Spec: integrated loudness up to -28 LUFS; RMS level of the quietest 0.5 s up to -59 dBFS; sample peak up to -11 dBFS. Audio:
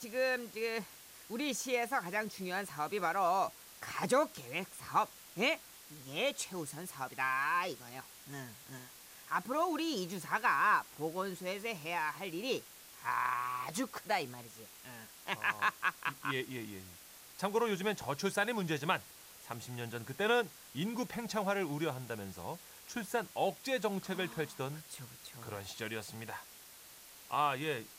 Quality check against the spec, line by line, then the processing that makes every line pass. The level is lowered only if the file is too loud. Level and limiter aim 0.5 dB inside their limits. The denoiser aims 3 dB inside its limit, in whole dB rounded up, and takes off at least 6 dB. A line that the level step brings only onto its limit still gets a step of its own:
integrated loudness -36.0 LUFS: pass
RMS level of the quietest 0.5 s -55 dBFS: fail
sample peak -16.5 dBFS: pass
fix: noise reduction 7 dB, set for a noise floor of -55 dBFS

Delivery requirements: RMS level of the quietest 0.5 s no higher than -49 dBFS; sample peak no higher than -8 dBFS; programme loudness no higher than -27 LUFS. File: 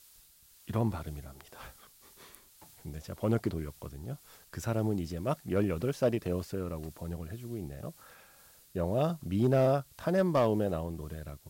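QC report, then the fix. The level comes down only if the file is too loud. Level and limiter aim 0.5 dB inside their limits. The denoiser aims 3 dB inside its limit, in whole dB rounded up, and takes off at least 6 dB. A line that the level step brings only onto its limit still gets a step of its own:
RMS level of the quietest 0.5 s -60 dBFS: pass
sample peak -18.5 dBFS: pass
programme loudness -32.5 LUFS: pass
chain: none needed

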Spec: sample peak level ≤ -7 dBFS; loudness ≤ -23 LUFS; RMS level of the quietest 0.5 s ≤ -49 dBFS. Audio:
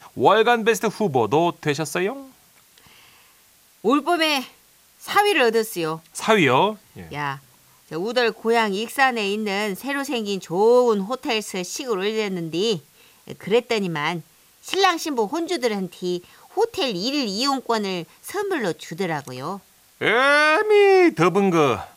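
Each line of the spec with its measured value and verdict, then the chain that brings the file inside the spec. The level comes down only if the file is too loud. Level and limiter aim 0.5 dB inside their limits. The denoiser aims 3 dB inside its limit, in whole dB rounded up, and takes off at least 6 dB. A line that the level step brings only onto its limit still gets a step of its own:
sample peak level -3.0 dBFS: fail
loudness -21.0 LUFS: fail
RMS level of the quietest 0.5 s -55 dBFS: pass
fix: trim -2.5 dB; peak limiter -7.5 dBFS

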